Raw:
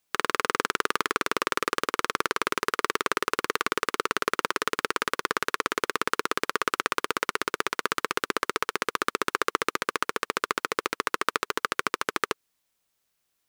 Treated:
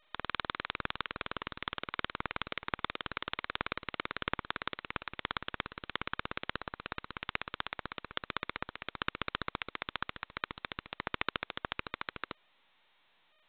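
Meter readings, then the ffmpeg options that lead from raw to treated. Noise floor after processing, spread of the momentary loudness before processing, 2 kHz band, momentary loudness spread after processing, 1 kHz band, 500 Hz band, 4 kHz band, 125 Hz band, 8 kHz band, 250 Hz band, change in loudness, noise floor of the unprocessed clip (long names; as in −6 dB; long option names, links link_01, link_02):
−70 dBFS, 2 LU, −10.5 dB, 5 LU, −12.5 dB, −15.5 dB, −8.5 dB, −1.0 dB, below −40 dB, −11.0 dB, −11.5 dB, −77 dBFS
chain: -af "equalizer=frequency=65:width=0.94:gain=-7.5,aeval=exprs='0.75*(cos(1*acos(clip(val(0)/0.75,-1,1)))-cos(1*PI/2))+0.0422*(cos(2*acos(clip(val(0)/0.75,-1,1)))-cos(2*PI/2))+0.015*(cos(5*acos(clip(val(0)/0.75,-1,1)))-cos(5*PI/2))+0.133*(cos(7*acos(clip(val(0)/0.75,-1,1)))-cos(7*PI/2))+0.0188*(cos(8*acos(clip(val(0)/0.75,-1,1)))-cos(8*PI/2))':channel_layout=same,volume=-5dB" -ar 8000 -c:a adpcm_g726 -b:a 16k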